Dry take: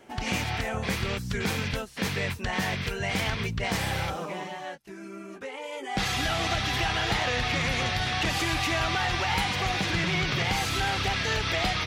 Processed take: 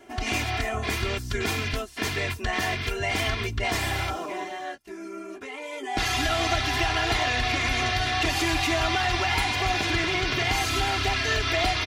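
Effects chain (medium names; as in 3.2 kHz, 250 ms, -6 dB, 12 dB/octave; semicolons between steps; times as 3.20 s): comb 2.9 ms, depth 85%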